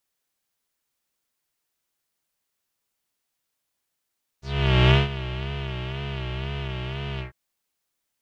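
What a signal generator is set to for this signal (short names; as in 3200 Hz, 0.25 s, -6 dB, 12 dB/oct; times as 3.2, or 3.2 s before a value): synth patch with vibrato C3, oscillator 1 square, oscillator 2 square, interval -12 st, detune 26 cents, oscillator 2 level -1.5 dB, filter lowpass, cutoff 1700 Hz, Q 4.4, filter envelope 2 oct, filter decay 0.11 s, attack 0.498 s, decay 0.16 s, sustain -16 dB, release 0.12 s, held 2.78 s, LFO 2 Hz, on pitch 94 cents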